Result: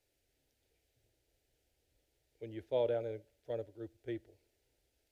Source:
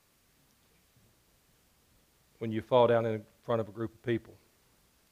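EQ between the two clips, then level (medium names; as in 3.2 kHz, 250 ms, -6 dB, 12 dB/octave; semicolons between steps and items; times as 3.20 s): treble shelf 3.7 kHz -7 dB; static phaser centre 460 Hz, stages 4; -7.0 dB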